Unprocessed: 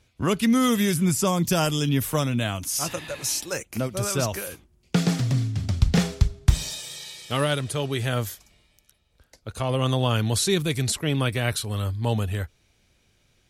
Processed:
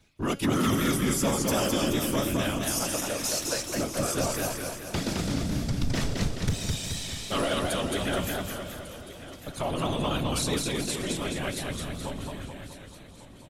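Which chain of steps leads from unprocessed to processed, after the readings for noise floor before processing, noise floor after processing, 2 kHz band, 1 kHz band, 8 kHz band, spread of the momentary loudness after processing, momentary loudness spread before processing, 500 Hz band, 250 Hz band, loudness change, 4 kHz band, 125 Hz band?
-65 dBFS, -47 dBFS, -2.0 dB, -2.0 dB, -1.5 dB, 14 LU, 10 LU, -2.5 dB, -3.5 dB, -4.0 dB, -2.0 dB, -8.0 dB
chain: fade out at the end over 4.30 s; comb 3.2 ms, depth 46%; in parallel at -0.5 dB: compression 6:1, threshold -30 dBFS, peak gain reduction 19 dB; on the sum: whisper effect; feedback comb 280 Hz, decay 0.44 s, harmonics all, mix 60%; overload inside the chain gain 21 dB; feedback delay 1148 ms, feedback 37%, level -15.5 dB; modulated delay 214 ms, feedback 54%, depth 115 cents, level -3 dB

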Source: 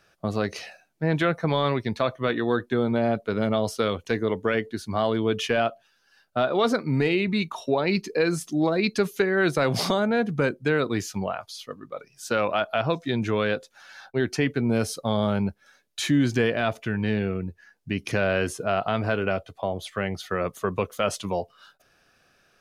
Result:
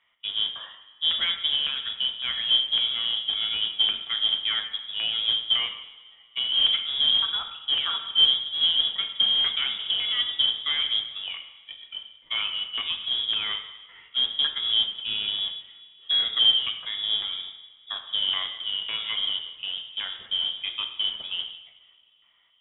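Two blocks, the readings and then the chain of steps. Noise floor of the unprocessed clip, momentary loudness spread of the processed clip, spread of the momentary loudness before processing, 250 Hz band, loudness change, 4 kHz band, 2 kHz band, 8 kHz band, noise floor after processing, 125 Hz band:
-65 dBFS, 13 LU, 8 LU, under -25 dB, +2.0 dB, +16.5 dB, -7.0 dB, under -40 dB, -57 dBFS, under -25 dB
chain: high-pass 190 Hz 12 dB/octave; peaking EQ 2 kHz -9 dB 3 oct; LFO low-pass square 1.8 Hz 490–2300 Hz; modulation noise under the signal 14 dB; two-slope reverb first 0.91 s, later 3.3 s, from -19 dB, DRR 5 dB; frequency inversion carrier 3.6 kHz; trim -2.5 dB

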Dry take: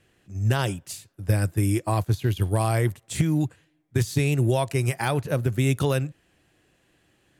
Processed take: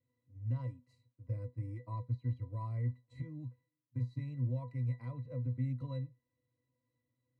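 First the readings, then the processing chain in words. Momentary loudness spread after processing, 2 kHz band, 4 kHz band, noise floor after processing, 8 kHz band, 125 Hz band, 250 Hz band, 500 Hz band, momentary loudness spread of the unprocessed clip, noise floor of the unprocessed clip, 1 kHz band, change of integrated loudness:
10 LU, under -25 dB, under -30 dB, under -85 dBFS, under -40 dB, -13.0 dB, -18.0 dB, -24.0 dB, 8 LU, -67 dBFS, -21.5 dB, -15.0 dB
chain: pitch-class resonator B, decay 0.16 s; trim -8 dB

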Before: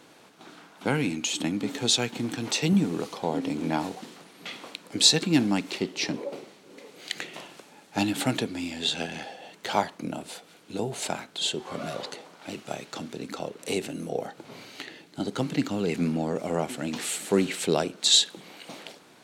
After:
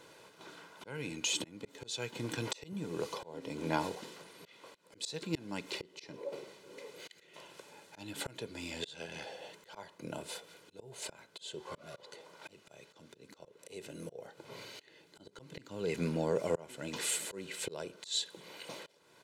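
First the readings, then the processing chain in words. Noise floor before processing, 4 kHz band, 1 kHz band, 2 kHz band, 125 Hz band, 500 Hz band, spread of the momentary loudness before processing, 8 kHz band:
-54 dBFS, -14.5 dB, -11.5 dB, -10.0 dB, -12.0 dB, -9.0 dB, 18 LU, -11.0 dB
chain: slow attack 504 ms; comb 2 ms, depth 57%; trim -4 dB

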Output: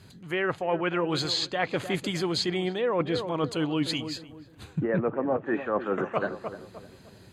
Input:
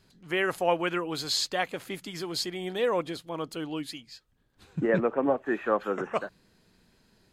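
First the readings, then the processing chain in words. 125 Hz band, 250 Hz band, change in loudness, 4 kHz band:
+6.5 dB, +3.5 dB, +1.0 dB, +2.0 dB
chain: high-pass 60 Hz; band-stop 5.4 kHz, Q 5.4; on a send: filtered feedback delay 304 ms, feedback 35%, low-pass 1.2 kHz, level -14.5 dB; on the sum: gain riding within 4 dB 2 s; low-pass that closes with the level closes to 2.4 kHz, closed at -22.5 dBFS; reverse; compression 6:1, threshold -33 dBFS, peak gain reduction 13.5 dB; reverse; peaking EQ 100 Hz +9 dB 0.99 oct; trim +8.5 dB

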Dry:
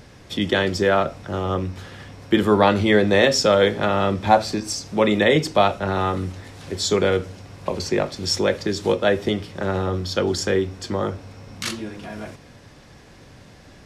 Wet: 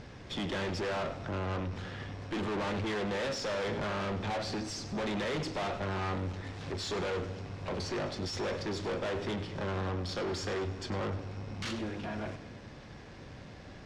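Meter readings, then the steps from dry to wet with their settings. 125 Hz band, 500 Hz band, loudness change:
-9.5 dB, -15.5 dB, -14.5 dB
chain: valve stage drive 32 dB, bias 0.45; distance through air 99 m; on a send: two-band feedback delay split 420 Hz, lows 230 ms, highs 101 ms, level -14.5 dB

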